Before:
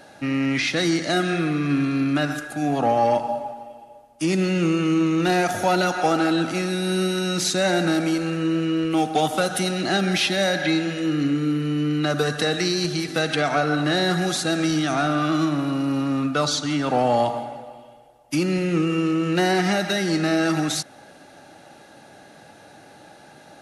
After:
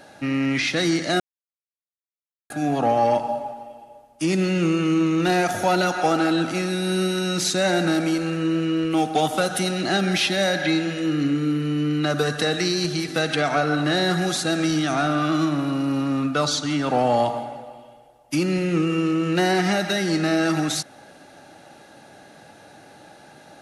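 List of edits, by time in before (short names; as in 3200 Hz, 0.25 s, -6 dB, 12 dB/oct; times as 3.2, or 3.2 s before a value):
1.2–2.5 mute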